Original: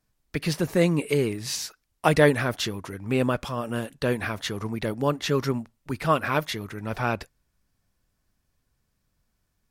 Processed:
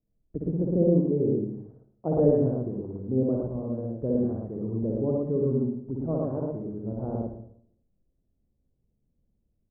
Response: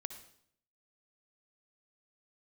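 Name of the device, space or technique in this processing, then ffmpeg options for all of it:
next room: -filter_complex "[0:a]lowpass=f=540:w=0.5412,lowpass=f=540:w=1.3066[a];[1:a]atrim=start_sample=2205[b];[a][b]afir=irnorm=-1:irlink=0,lowpass=2.4k,bandreject=f=50:t=h:w=6,bandreject=f=100:t=h:w=6,bandreject=f=150:t=h:w=6,aecho=1:1:61.22|113.7:0.794|0.891"

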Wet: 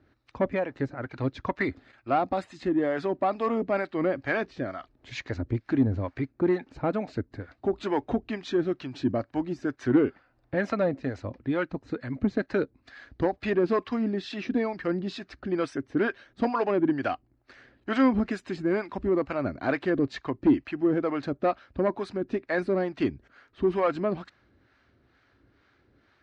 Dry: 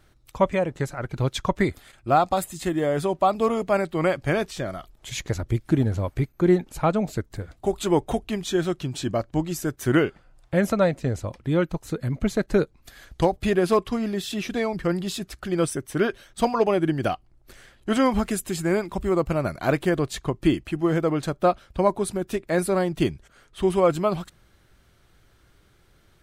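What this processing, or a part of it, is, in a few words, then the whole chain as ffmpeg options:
guitar amplifier with harmonic tremolo: -filter_complex "[0:a]acrossover=split=600[a][b];[a]aeval=exprs='val(0)*(1-0.7/2+0.7/2*cos(2*PI*2.2*n/s))':c=same[c];[b]aeval=exprs='val(0)*(1-0.7/2-0.7/2*cos(2*PI*2.2*n/s))':c=same[d];[c][d]amix=inputs=2:normalize=0,asoftclip=type=tanh:threshold=-16dB,highpass=78,equalizer=f=160:t=q:w=4:g=-8,equalizer=f=270:t=q:w=4:g=9,equalizer=f=1.7k:t=q:w=4:g=4,equalizer=f=3.3k:t=q:w=4:g=-7,lowpass=f=4.4k:w=0.5412,lowpass=f=4.4k:w=1.3066"

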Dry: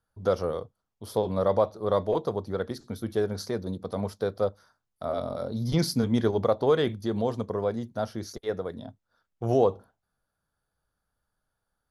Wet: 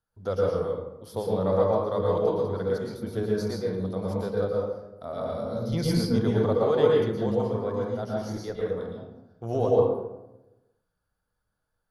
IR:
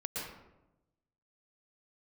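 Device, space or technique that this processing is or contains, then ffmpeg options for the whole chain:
bathroom: -filter_complex "[1:a]atrim=start_sample=2205[a];[0:a][a]afir=irnorm=-1:irlink=0,volume=-2.5dB"

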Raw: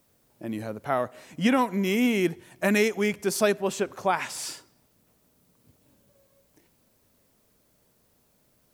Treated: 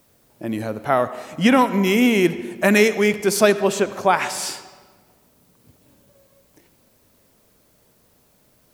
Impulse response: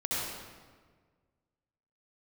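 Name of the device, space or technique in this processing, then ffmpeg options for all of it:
filtered reverb send: -filter_complex "[0:a]asplit=2[a][b];[b]highpass=f=180:w=0.5412,highpass=f=180:w=1.3066,lowpass=6.3k[c];[1:a]atrim=start_sample=2205[d];[c][d]afir=irnorm=-1:irlink=0,volume=-19.5dB[e];[a][e]amix=inputs=2:normalize=0,volume=7dB"

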